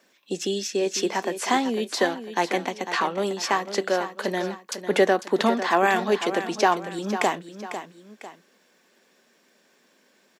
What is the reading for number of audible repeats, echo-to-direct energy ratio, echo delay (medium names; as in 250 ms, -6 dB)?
2, -10.5 dB, 499 ms